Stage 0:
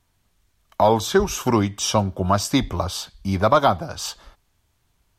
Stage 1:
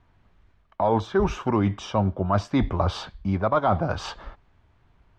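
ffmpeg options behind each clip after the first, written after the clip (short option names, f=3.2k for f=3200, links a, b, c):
-af "lowpass=2k,areverse,acompressor=threshold=-28dB:ratio=4,areverse,volume=7.5dB"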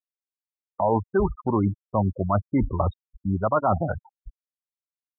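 -af "aeval=exprs='sgn(val(0))*max(abs(val(0))-0.002,0)':c=same,afftfilt=real='re*gte(hypot(re,im),0.1)':imag='im*gte(hypot(re,im),0.1)':win_size=1024:overlap=0.75"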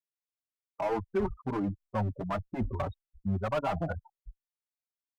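-filter_complex "[0:a]asoftclip=type=hard:threshold=-19dB,asplit=2[a][b];[b]adelay=4.7,afreqshift=1.4[c];[a][c]amix=inputs=2:normalize=1,volume=-3.5dB"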